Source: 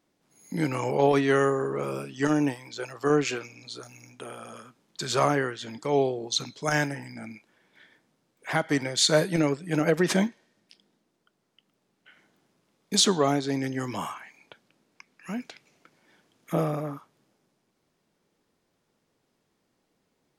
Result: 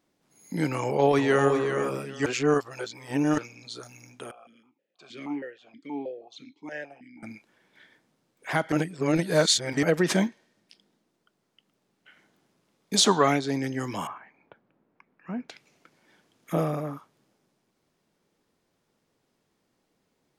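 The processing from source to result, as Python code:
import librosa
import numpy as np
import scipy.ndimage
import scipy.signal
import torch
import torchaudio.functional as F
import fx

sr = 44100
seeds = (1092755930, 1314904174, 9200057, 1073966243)

y = fx.echo_throw(x, sr, start_s=0.79, length_s=0.71, ms=390, feedback_pct=20, wet_db=-7.0)
y = fx.vowel_held(y, sr, hz=6.3, at=(4.31, 7.23))
y = fx.peak_eq(y, sr, hz=fx.line((12.96, 520.0), (13.37, 2600.0)), db=11.5, octaves=0.91, at=(12.96, 13.37), fade=0.02)
y = fx.lowpass(y, sr, hz=1400.0, slope=12, at=(14.07, 15.49))
y = fx.edit(y, sr, fx.reverse_span(start_s=2.26, length_s=1.12),
    fx.reverse_span(start_s=8.72, length_s=1.11), tone=tone)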